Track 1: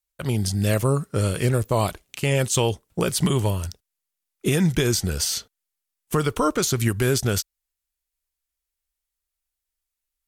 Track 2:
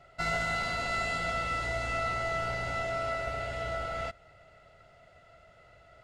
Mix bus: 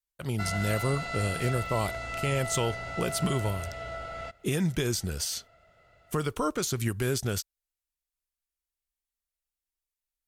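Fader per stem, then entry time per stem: −7.5, −3.5 decibels; 0.00, 0.20 seconds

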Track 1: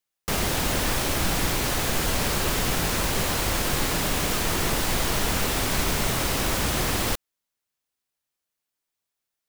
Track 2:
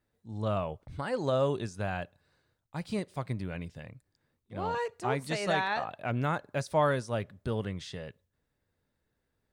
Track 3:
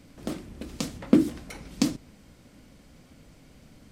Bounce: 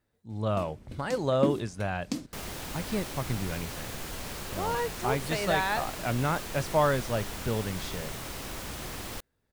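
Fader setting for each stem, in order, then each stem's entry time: −13.5, +2.0, −9.0 decibels; 2.05, 0.00, 0.30 seconds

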